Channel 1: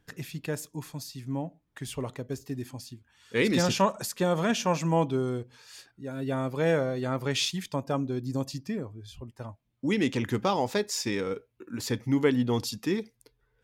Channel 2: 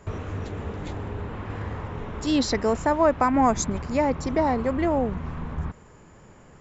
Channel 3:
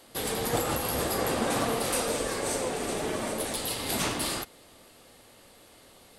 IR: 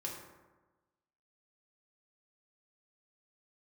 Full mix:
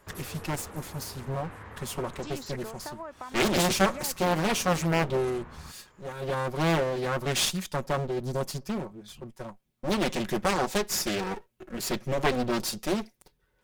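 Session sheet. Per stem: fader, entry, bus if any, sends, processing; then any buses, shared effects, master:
+1.5 dB, 0.00 s, no send, lower of the sound and its delayed copy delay 5.4 ms
−15.0 dB, 0.00 s, no send, parametric band 1,500 Hz +9.5 dB 2.4 octaves; downward compressor 6 to 1, threshold −23 dBFS, peak gain reduction 13.5 dB
−12.5 dB, 0.00 s, no send, phaser with staggered stages 5 Hz; automatic ducking −21 dB, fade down 2.00 s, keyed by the first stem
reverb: not used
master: high-shelf EQ 5,500 Hz +7 dB; highs frequency-modulated by the lows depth 0.91 ms

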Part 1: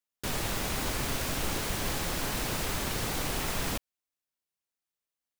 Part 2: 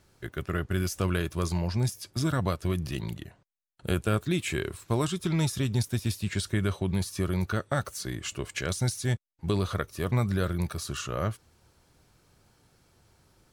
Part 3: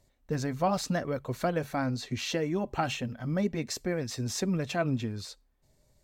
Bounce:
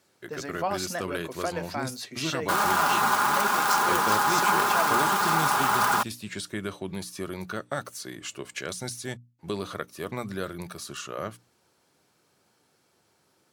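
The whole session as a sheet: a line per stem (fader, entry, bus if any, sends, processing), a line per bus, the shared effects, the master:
+1.0 dB, 2.25 s, no send, wrap-around overflow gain 22.5 dB; flat-topped bell 1,100 Hz +16 dB 1.2 octaves; comb filter 4.9 ms, depth 58%
−1.5 dB, 0.00 s, no send, no processing
+2.0 dB, 0.00 s, no send, low-shelf EQ 410 Hz −11.5 dB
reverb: not used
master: high-pass filter 210 Hz 12 dB per octave; mains-hum notches 60/120/180/240/300 Hz

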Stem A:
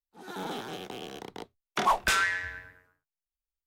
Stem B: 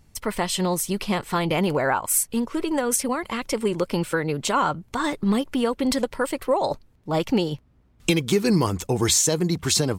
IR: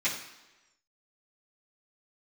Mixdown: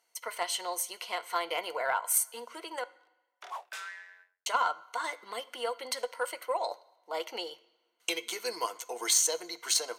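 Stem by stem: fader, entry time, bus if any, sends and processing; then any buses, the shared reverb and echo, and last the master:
−10.5 dB, 1.65 s, no send, automatic ducking −22 dB, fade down 0.25 s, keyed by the second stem
−3.0 dB, 0.00 s, muted 0:02.84–0:04.46, send −20 dB, EQ curve with evenly spaced ripples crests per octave 1.9, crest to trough 9 dB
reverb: on, RT60 1.1 s, pre-delay 3 ms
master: high-pass filter 540 Hz 24 dB per octave; harmonic generator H 3 −16 dB, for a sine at −7.5 dBFS

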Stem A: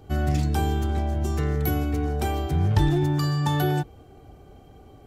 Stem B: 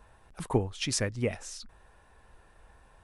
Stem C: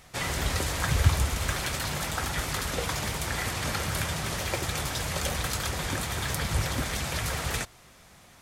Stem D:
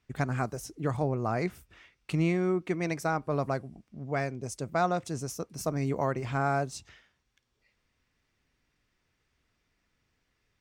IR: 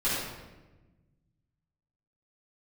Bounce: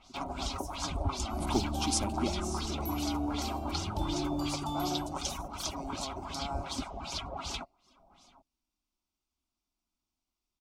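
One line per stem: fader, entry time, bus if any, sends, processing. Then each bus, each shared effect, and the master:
−11.5 dB, 1.20 s, send −14.5 dB, no echo send, no processing
+0.5 dB, 1.00 s, no send, no echo send, no processing
−3.0 dB, 0.00 s, no send, no echo send, reverb reduction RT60 0.66 s; comb filter 7.3 ms, depth 31%; auto-filter low-pass sine 2.7 Hz 590–6,000 Hz
−10.5 dB, 0.00 s, no send, echo send −13.5 dB, parametric band 13,000 Hz +6.5 dB 1.9 octaves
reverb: on, RT60 1.2 s, pre-delay 3 ms
echo: single-tap delay 99 ms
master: phaser with its sweep stopped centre 480 Hz, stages 6

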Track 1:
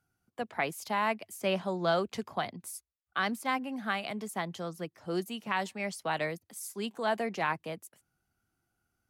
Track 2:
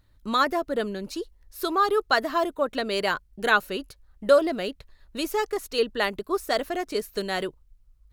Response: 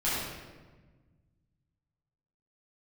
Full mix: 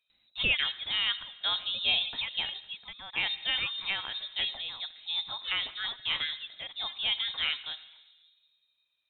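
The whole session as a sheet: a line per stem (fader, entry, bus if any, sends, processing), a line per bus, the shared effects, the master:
−1.0 dB, 0.00 s, send −22 dB, no processing
+1.5 dB, 0.10 s, no send, parametric band 250 Hz −8.5 dB 2.3 octaves; automatic ducking −15 dB, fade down 1.45 s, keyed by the first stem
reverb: on, RT60 1.4 s, pre-delay 8 ms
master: high-pass filter 92 Hz; voice inversion scrambler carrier 3,900 Hz

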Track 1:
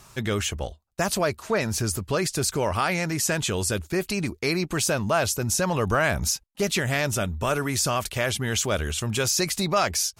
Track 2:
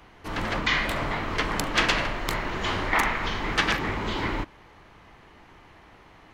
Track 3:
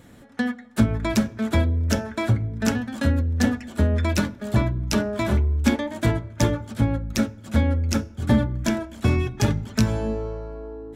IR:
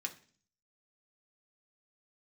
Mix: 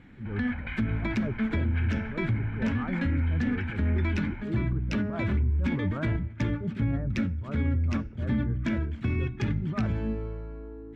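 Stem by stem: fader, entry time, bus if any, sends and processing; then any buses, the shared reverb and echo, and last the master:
−5.0 dB, 0.00 s, no send, low-pass filter 1,300 Hz 24 dB per octave; transient designer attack −11 dB, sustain +9 dB; every bin expanded away from the loudest bin 1.5 to 1
−12.0 dB, 0.00 s, send −4 dB, low-pass filter 2,000 Hz 12 dB per octave; comb filter 1.3 ms, depth 94%; downward compressor, threshold −24 dBFS, peak gain reduction 7.5 dB
−2.5 dB, 0.00 s, no send, no processing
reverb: on, RT60 0.45 s, pre-delay 3 ms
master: drawn EQ curve 290 Hz 0 dB, 650 Hz −12 dB, 2,200 Hz +2 dB, 11,000 Hz −29 dB; brickwall limiter −19 dBFS, peak gain reduction 10 dB

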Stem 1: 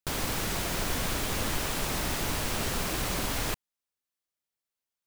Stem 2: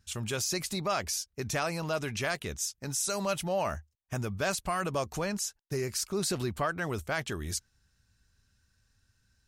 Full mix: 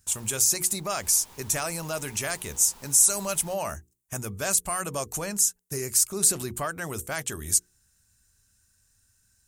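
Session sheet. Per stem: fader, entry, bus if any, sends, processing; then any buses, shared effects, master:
0:00.83 −22 dB → 0:01.08 −11 dB, 0.00 s, no send, parametric band 920 Hz +12.5 dB 0.32 octaves; automatic ducking −12 dB, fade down 0.95 s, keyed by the second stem
−0.5 dB, 0.00 s, no send, high shelf with overshoot 6,100 Hz +9 dB, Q 1.5; mains-hum notches 60/120/180/240/300/360/420/480 Hz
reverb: not used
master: high-shelf EQ 3,600 Hz +6 dB

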